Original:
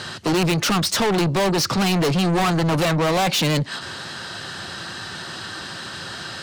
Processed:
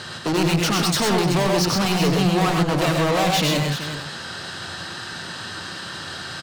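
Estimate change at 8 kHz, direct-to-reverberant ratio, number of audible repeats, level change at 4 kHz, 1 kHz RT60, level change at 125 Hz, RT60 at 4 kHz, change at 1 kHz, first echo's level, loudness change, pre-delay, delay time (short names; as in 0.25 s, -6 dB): 0.0 dB, none, 4, 0.0 dB, none, 0.0 dB, none, 0.0 dB, -6.0 dB, 0.0 dB, none, 96 ms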